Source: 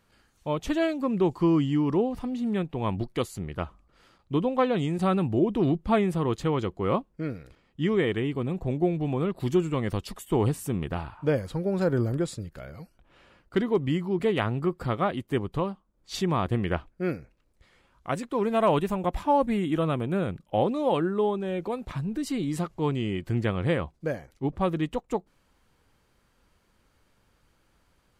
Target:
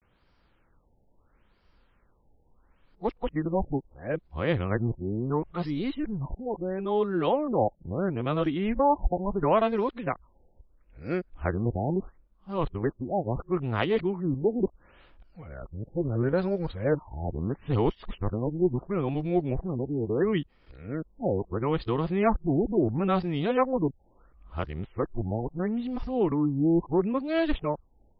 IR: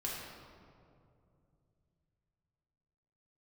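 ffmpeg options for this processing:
-af "areverse,asubboost=boost=3:cutoff=67,afftfilt=real='re*lt(b*sr/1024,860*pow(5800/860,0.5+0.5*sin(2*PI*0.74*pts/sr)))':imag='im*lt(b*sr/1024,860*pow(5800/860,0.5+0.5*sin(2*PI*0.74*pts/sr)))':win_size=1024:overlap=0.75"

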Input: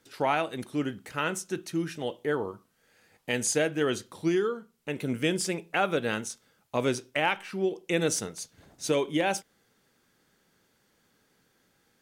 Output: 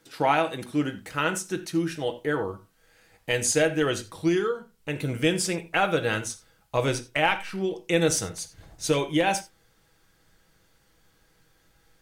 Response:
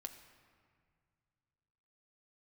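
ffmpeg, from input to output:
-filter_complex "[0:a]asubboost=boost=7.5:cutoff=73[a];[1:a]atrim=start_sample=2205,atrim=end_sample=4410[b];[a][b]afir=irnorm=-1:irlink=0,volume=8.5dB"

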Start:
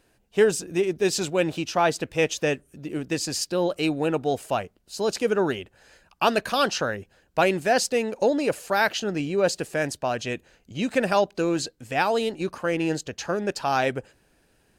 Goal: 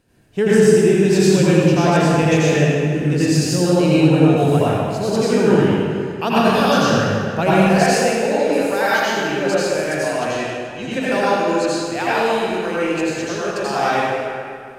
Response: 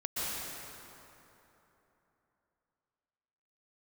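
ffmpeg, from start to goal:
-filter_complex "[0:a]asetnsamples=n=441:p=0,asendcmd='7.54 equalizer g -4.5',equalizer=f=150:t=o:w=1.6:g=11.5[a];[1:a]atrim=start_sample=2205,asetrate=66150,aresample=44100[b];[a][b]afir=irnorm=-1:irlink=0,volume=3.5dB"

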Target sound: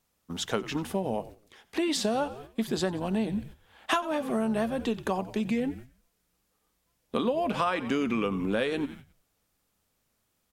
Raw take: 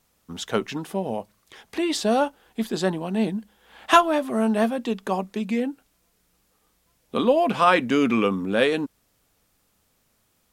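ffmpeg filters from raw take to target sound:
-filter_complex "[0:a]asplit=5[a][b][c][d][e];[b]adelay=90,afreqshift=-74,volume=-18dB[f];[c]adelay=180,afreqshift=-148,volume=-23.7dB[g];[d]adelay=270,afreqshift=-222,volume=-29.4dB[h];[e]adelay=360,afreqshift=-296,volume=-35dB[i];[a][f][g][h][i]amix=inputs=5:normalize=0,agate=range=-8dB:threshold=-42dB:ratio=16:detection=peak,acompressor=threshold=-24dB:ratio=8"

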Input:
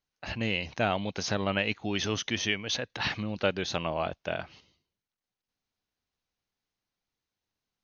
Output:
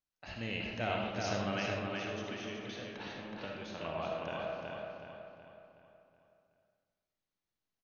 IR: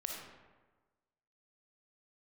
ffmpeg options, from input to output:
-filter_complex "[0:a]asettb=1/sr,asplit=3[a][b][c];[a]atrim=end=1.674[d];[b]atrim=start=1.67:end=3.81,asetpts=PTS-STARTPTS,afade=t=in:d=0.004:c=qsin,afade=t=out:st=2.136:d=0.004:c=qsin,acrossover=split=230|840|2500[e][f][g][h];[e]acompressor=threshold=-46dB:ratio=4[i];[f]acompressor=threshold=-37dB:ratio=4[j];[g]acompressor=threshold=-43dB:ratio=4[k];[h]acompressor=threshold=-46dB:ratio=4[l];[i][j][k][l]amix=inputs=4:normalize=0[m];[c]atrim=start=3.806[n];[d][m]acrossfade=d=0.004:c1=hsin:c2=qsin[o];[o][n]acrossfade=d=0.004:c1=qsin:c2=hsin,asplit=2[p][q];[q]adelay=372,lowpass=f=4.4k:p=1,volume=-3dB,asplit=2[r][s];[s]adelay=372,lowpass=f=4.4k:p=1,volume=0.48,asplit=2[t][u];[u]adelay=372,lowpass=f=4.4k:p=1,volume=0.48,asplit=2[v][w];[w]adelay=372,lowpass=f=4.4k:p=1,volume=0.48,asplit=2[x][y];[y]adelay=372,lowpass=f=4.4k:p=1,volume=0.48,asplit=2[z][aa];[aa]adelay=372,lowpass=f=4.4k:p=1,volume=0.48[ab];[p][r][t][v][x][z][ab]amix=inputs=7:normalize=0[ac];[1:a]atrim=start_sample=2205[ad];[ac][ad]afir=irnorm=-1:irlink=0,volume=-7.5dB"

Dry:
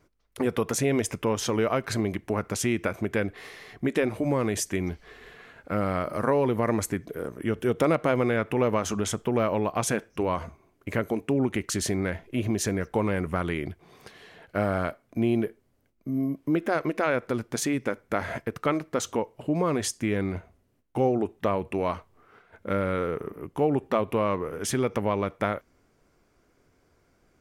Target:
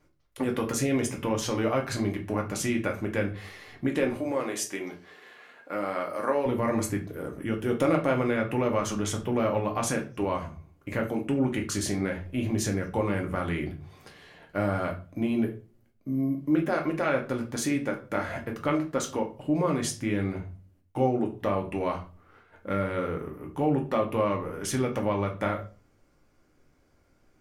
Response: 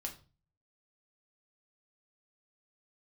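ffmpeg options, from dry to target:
-filter_complex "[0:a]asettb=1/sr,asplit=3[a][b][c];[a]atrim=end=4.154[d];[b]atrim=start=4.15:end=6.46,asetpts=PTS-STARTPTS,afade=t=in:d=0.004:c=qsin,afade=t=out:st=2.306:d=0.004:c=qsin,highpass=350[e];[c]atrim=start=6.456[f];[d][e]acrossfade=d=0.004:c1=hsin:c2=qsin[g];[g][f]acrossfade=d=0.004:c1=qsin:c2=hsin[h];[1:a]atrim=start_sample=2205[i];[h][i]afir=irnorm=-1:irlink=0"

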